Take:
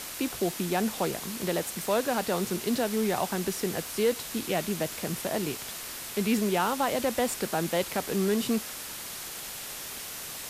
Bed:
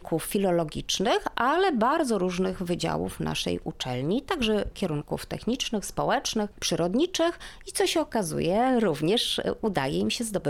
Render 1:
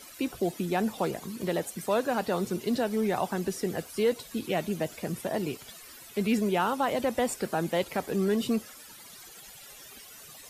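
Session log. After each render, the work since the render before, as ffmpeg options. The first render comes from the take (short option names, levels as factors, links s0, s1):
-af "afftdn=nr=15:nf=-39"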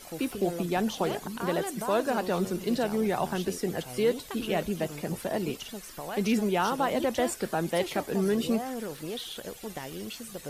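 -filter_complex "[1:a]volume=0.237[s0];[0:a][s0]amix=inputs=2:normalize=0"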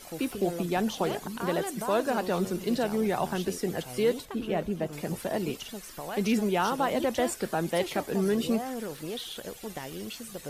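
-filter_complex "[0:a]asettb=1/sr,asplit=3[s0][s1][s2];[s0]atrim=end=4.254[s3];[s1]atrim=start=4.25:end=4.93,asetpts=PTS-STARTPTS,afade=t=in:d=0.004:c=qsin,afade=t=out:st=0.676:d=0.004:c=qsin,highshelf=f=2400:g=-11[s4];[s2]atrim=start=4.926[s5];[s3][s4]acrossfade=d=0.004:c1=hsin:c2=qsin[s6];[s6][s5]acrossfade=d=0.004:c1=qsin:c2=hsin"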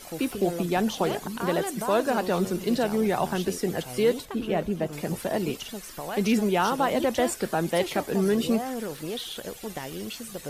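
-af "volume=1.41"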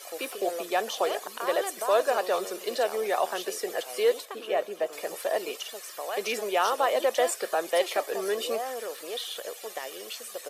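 -af "highpass=f=410:w=0.5412,highpass=f=410:w=1.3066,aecho=1:1:1.7:0.3"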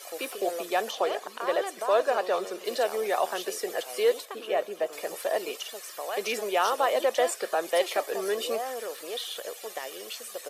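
-filter_complex "[0:a]asettb=1/sr,asplit=3[s0][s1][s2];[s0]atrim=end=0.914[s3];[s1]atrim=start=0.91:end=2.65,asetpts=PTS-STARTPTS,afade=t=in:d=0.004:c=qsin,afade=t=out:st=1.736:d=0.004:c=qsin,highshelf=f=6900:g=-11[s4];[s2]atrim=start=2.646[s5];[s3][s4]acrossfade=d=0.004:c1=hsin:c2=qsin[s6];[s6][s5]acrossfade=d=0.004:c1=qsin:c2=hsin,asettb=1/sr,asplit=3[s7][s8][s9];[s7]atrim=end=7.034[s10];[s8]atrim=start=7.03:end=7.63,asetpts=PTS-STARTPTS,afade=t=in:d=0.004:c=qsin,afade=t=out:st=0.596:d=0.004:c=qsin,highshelf=f=8500:g=-4[s11];[s9]atrim=start=7.626[s12];[s10][s11]acrossfade=d=0.004:c1=hsin:c2=qsin[s13];[s13][s12]acrossfade=d=0.004:c1=qsin:c2=hsin"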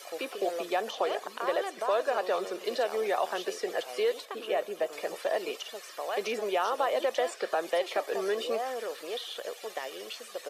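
-filter_complex "[0:a]acrossover=split=1400|5800[s0][s1][s2];[s0]acompressor=threshold=0.0562:ratio=4[s3];[s1]acompressor=threshold=0.0141:ratio=4[s4];[s2]acompressor=threshold=0.00158:ratio=4[s5];[s3][s4][s5]amix=inputs=3:normalize=0"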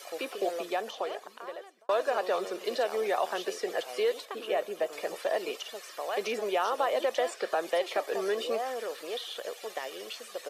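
-filter_complex "[0:a]asplit=2[s0][s1];[s0]atrim=end=1.89,asetpts=PTS-STARTPTS,afade=t=out:st=0.45:d=1.44[s2];[s1]atrim=start=1.89,asetpts=PTS-STARTPTS,afade=t=in:d=0.004:c=hsin[s3];[s2][s3]concat=n=2:v=0:a=1"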